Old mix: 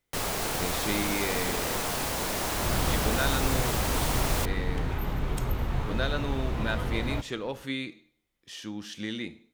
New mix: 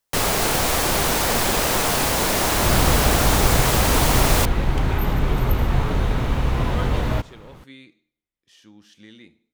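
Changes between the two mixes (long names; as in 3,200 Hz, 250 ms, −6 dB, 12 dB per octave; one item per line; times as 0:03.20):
speech −11.5 dB
first sound +10.0 dB
second sound +9.5 dB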